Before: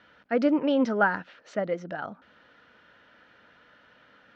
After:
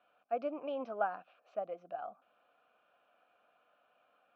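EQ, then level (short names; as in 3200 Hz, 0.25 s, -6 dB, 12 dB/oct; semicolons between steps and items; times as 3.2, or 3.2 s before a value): vowel filter a; low shelf 230 Hz +4.5 dB; -1.0 dB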